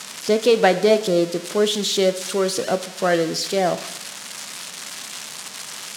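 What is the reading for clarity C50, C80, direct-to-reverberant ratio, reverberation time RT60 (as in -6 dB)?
13.5 dB, 16.0 dB, 11.0 dB, 0.85 s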